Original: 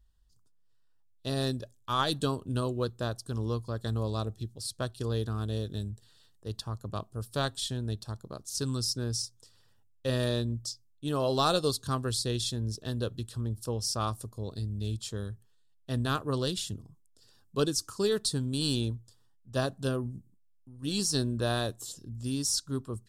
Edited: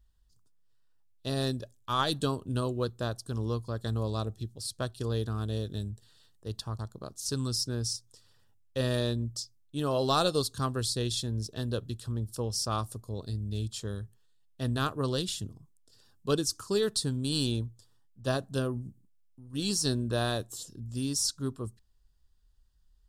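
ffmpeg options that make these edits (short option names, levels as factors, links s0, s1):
-filter_complex "[0:a]asplit=2[s0][s1];[s0]atrim=end=6.792[s2];[s1]atrim=start=8.078[s3];[s2][s3]acrossfade=d=0.004:c1=hsin:c2=hsin"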